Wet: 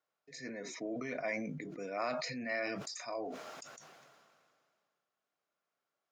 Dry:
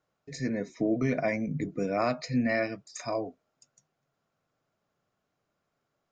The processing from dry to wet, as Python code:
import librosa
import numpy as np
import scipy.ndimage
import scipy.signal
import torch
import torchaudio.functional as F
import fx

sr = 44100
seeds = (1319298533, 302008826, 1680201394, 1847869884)

y = fx.weighting(x, sr, curve='A')
y = fx.sustainer(y, sr, db_per_s=27.0)
y = y * librosa.db_to_amplitude(-7.5)